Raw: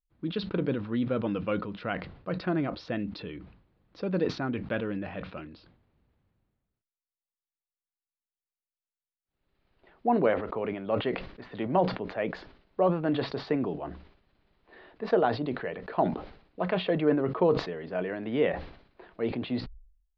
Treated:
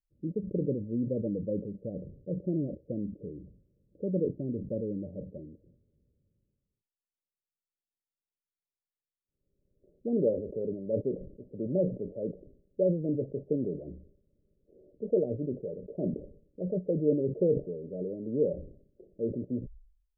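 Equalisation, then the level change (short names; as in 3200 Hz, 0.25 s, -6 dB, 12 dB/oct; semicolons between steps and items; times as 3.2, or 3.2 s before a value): rippled Chebyshev low-pass 590 Hz, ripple 3 dB; 0.0 dB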